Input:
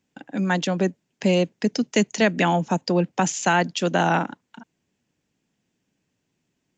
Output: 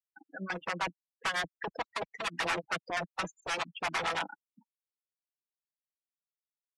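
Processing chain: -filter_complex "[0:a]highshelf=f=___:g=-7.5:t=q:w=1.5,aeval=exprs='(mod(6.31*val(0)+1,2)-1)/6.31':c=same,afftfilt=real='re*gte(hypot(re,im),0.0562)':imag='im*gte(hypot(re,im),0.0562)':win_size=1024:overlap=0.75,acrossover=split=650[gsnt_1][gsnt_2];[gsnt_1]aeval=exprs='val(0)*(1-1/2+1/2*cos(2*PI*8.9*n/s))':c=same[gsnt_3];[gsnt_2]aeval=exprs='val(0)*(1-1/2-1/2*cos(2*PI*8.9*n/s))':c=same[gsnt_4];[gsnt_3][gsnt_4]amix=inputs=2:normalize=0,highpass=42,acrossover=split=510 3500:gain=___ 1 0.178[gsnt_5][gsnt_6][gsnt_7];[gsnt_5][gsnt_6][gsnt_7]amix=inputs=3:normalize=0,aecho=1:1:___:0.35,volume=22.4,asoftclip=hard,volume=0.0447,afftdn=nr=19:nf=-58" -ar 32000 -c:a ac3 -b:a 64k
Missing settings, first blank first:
2.8k, 0.141, 6.1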